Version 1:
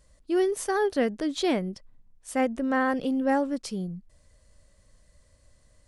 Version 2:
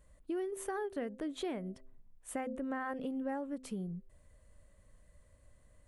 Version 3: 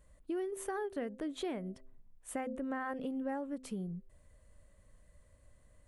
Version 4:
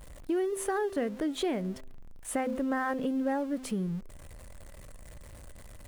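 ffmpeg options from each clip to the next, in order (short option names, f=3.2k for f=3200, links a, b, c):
-af "equalizer=f=5.1k:w=1.4:g=-14.5,bandreject=f=129.7:t=h:w=4,bandreject=f=259.4:t=h:w=4,bandreject=f=389.1:t=h:w=4,bandreject=f=518.8:t=h:w=4,bandreject=f=648.5:t=h:w=4,acompressor=threshold=-34dB:ratio=4,volume=-2.5dB"
-af anull
-af "aeval=exprs='val(0)+0.5*0.00251*sgn(val(0))':c=same,volume=7dB"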